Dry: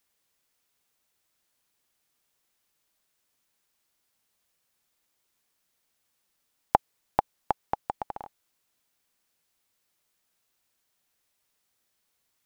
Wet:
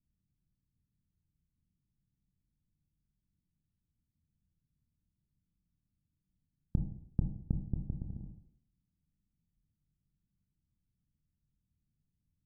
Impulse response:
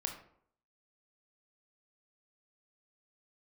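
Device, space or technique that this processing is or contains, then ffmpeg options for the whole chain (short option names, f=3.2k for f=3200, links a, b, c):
club heard from the street: -filter_complex "[0:a]alimiter=limit=-7dB:level=0:latency=1,lowpass=f=180:w=0.5412,lowpass=f=180:w=1.3066[a];[1:a]atrim=start_sample=2205[b];[a][b]afir=irnorm=-1:irlink=0,asettb=1/sr,asplit=3[c][d][e];[c]atrim=end=7.514[f];[d]atrim=start=7.51:end=8.25,asetpts=PTS-STARTPTS,afade=t=in:d=0.004:c=qsin,afade=t=out:st=0.736:d=0.004:c=qsin,equalizer=f=3.2k:w=0.39:g=-7[g];[e]atrim=start=8.246[h];[f][g]acrossfade=d=0.004:c1=hsin:c2=qsin[i];[i][h]acrossfade=d=0.004:c1=qsin:c2=hsin,volume=14dB"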